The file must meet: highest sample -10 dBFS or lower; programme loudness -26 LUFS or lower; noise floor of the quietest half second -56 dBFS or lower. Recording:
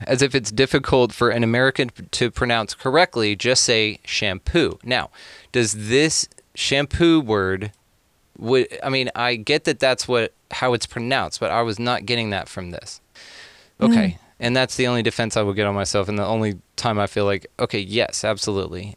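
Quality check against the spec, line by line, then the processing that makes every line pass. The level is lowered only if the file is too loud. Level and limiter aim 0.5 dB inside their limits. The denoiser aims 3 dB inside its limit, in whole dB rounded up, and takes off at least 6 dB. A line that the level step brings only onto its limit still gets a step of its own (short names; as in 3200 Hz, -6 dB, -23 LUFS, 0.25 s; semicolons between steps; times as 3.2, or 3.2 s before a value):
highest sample -3.0 dBFS: fail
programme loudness -20.5 LUFS: fail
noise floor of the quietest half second -62 dBFS: OK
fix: gain -6 dB; limiter -10.5 dBFS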